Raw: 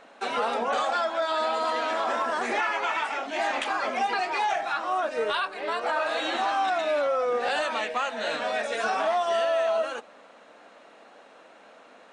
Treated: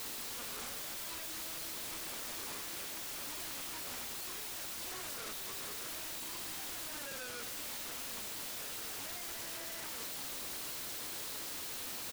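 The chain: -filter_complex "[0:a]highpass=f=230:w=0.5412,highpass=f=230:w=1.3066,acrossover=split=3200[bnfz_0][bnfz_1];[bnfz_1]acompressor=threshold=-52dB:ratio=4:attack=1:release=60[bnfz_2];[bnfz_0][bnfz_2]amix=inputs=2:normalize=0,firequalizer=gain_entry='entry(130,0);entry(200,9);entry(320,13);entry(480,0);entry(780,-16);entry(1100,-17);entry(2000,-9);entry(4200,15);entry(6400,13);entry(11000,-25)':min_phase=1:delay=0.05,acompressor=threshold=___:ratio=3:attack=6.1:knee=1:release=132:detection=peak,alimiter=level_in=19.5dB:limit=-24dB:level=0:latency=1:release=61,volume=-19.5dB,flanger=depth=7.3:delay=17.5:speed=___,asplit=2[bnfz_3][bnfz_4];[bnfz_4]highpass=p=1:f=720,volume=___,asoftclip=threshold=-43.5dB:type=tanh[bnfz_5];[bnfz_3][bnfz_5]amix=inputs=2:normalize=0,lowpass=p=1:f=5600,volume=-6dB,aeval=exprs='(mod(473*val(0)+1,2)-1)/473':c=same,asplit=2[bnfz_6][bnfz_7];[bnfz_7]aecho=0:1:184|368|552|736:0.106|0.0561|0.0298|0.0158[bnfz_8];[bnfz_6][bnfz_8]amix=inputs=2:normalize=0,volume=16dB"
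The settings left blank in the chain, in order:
-48dB, 1.1, 22dB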